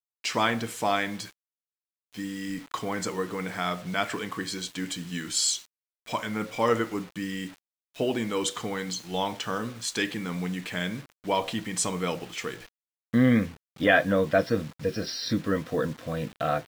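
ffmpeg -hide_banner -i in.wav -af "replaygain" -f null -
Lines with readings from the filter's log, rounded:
track_gain = +7.8 dB
track_peak = 0.275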